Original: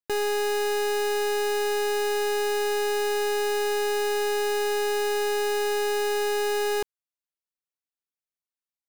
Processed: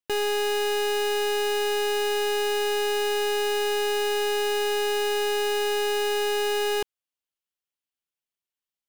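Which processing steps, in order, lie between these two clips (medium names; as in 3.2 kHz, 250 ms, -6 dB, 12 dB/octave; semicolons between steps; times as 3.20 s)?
peaking EQ 3 kHz +6.5 dB 0.48 oct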